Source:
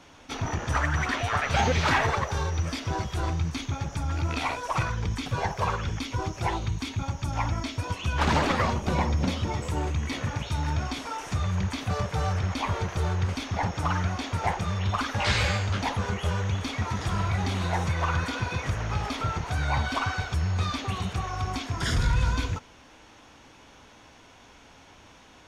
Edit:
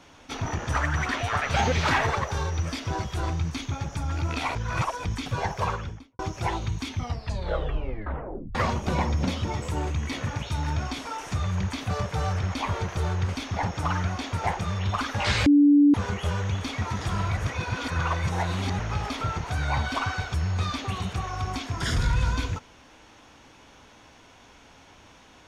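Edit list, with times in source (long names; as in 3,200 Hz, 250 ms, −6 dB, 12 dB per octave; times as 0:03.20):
0:04.55–0:05.05: reverse
0:05.63–0:06.19: fade out and dull
0:06.87: tape stop 1.68 s
0:15.46–0:15.94: beep over 289 Hz −13 dBFS
0:17.37–0:18.79: reverse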